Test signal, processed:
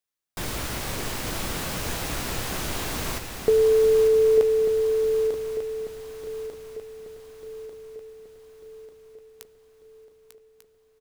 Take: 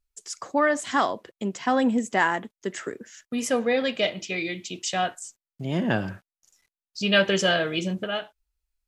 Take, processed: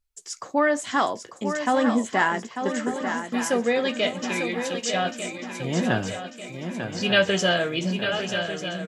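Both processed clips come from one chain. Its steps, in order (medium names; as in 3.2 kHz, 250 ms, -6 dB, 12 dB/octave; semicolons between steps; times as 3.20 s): doubling 17 ms -11.5 dB; shuffle delay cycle 1194 ms, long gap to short 3:1, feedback 49%, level -8 dB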